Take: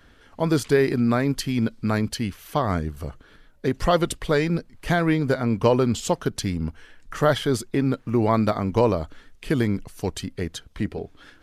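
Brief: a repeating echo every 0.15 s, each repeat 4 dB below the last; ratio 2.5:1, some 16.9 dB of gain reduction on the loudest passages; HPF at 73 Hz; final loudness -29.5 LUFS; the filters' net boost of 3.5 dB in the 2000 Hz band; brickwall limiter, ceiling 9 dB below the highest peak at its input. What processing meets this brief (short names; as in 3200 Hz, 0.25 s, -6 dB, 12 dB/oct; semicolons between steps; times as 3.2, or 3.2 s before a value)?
HPF 73 Hz; bell 2000 Hz +4.5 dB; compressor 2.5:1, threshold -40 dBFS; limiter -29.5 dBFS; feedback echo 0.15 s, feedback 63%, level -4 dB; gain +9.5 dB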